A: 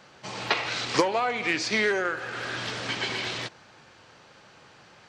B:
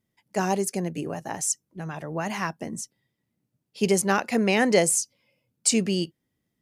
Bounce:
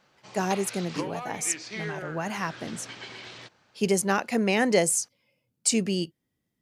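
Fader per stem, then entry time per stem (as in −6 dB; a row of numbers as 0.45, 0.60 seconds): −11.5, −2.0 decibels; 0.00, 0.00 seconds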